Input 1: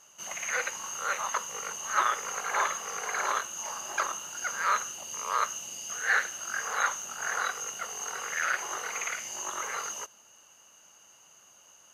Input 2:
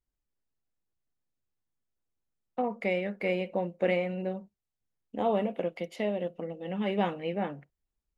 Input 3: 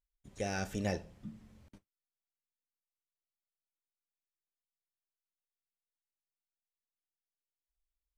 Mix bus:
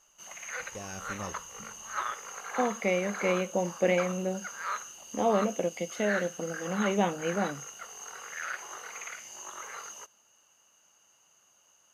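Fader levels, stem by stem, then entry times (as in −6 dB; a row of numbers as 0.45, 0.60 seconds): −7.5, +1.5, −6.0 decibels; 0.00, 0.00, 0.35 seconds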